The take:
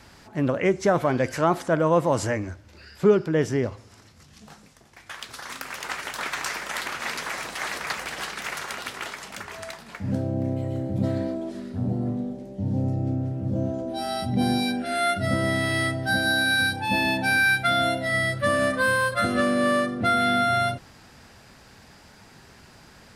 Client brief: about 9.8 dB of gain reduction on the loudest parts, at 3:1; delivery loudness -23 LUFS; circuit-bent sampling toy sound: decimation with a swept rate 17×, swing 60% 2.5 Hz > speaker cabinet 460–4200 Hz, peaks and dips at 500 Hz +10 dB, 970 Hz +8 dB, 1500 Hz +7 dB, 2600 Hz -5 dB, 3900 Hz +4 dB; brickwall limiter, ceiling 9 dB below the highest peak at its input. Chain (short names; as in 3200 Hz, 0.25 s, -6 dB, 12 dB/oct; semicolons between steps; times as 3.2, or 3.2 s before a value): compressor 3:1, threshold -26 dBFS; limiter -22.5 dBFS; decimation with a swept rate 17×, swing 60% 2.5 Hz; speaker cabinet 460–4200 Hz, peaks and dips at 500 Hz +10 dB, 970 Hz +8 dB, 1500 Hz +7 dB, 2600 Hz -5 dB, 3900 Hz +4 dB; gain +7.5 dB